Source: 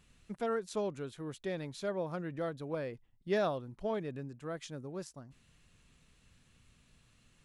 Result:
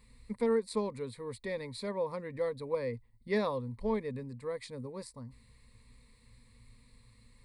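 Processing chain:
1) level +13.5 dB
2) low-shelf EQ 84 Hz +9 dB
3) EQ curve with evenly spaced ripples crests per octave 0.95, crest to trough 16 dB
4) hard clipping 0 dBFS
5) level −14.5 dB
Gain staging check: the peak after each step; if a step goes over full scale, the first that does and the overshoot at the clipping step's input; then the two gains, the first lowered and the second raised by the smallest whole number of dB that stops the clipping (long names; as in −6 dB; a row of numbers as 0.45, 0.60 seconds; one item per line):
−8.0, −7.0, −5.5, −5.5, −20.0 dBFS
no step passes full scale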